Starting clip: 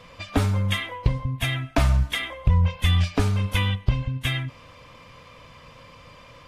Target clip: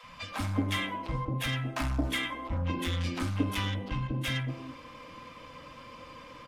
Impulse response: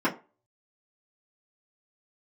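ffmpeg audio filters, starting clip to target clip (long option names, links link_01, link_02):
-filter_complex "[0:a]asoftclip=type=tanh:threshold=-23.5dB,acrossover=split=210|680[link_01][link_02][link_03];[link_01]adelay=30[link_04];[link_02]adelay=220[link_05];[link_04][link_05][link_03]amix=inputs=3:normalize=0,asplit=2[link_06][link_07];[1:a]atrim=start_sample=2205,lowshelf=frequency=220:gain=4[link_08];[link_07][link_08]afir=irnorm=-1:irlink=0,volume=-14.5dB[link_09];[link_06][link_09]amix=inputs=2:normalize=0,volume=-3dB"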